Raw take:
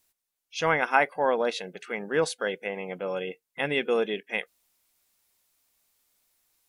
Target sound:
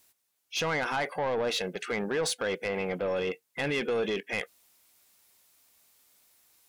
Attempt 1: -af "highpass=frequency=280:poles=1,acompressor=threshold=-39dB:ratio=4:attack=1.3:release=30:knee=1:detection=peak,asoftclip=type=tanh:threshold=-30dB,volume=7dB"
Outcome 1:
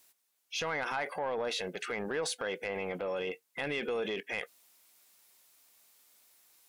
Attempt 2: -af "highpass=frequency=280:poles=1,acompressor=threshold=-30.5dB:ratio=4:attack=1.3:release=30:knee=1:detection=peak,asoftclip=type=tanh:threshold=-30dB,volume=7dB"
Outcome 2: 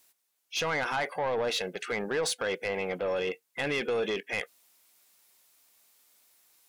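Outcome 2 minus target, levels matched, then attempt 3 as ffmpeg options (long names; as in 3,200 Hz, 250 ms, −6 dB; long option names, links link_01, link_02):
125 Hz band −3.0 dB
-af "highpass=frequency=75:poles=1,acompressor=threshold=-30.5dB:ratio=4:attack=1.3:release=30:knee=1:detection=peak,asoftclip=type=tanh:threshold=-30dB,volume=7dB"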